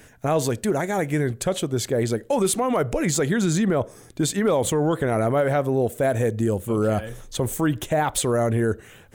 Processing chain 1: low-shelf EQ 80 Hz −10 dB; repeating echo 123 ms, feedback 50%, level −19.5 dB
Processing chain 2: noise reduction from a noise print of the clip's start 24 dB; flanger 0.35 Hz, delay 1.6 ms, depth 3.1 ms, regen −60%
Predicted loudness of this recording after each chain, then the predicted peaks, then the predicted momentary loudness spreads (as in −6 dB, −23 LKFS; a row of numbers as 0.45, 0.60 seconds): −23.5, −29.0 LKFS; −11.5, −15.5 dBFS; 5, 6 LU